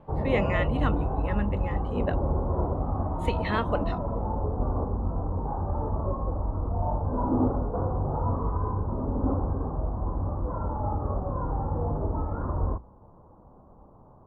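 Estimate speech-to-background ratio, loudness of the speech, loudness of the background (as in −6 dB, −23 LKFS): −3.0 dB, −32.5 LKFS, −29.5 LKFS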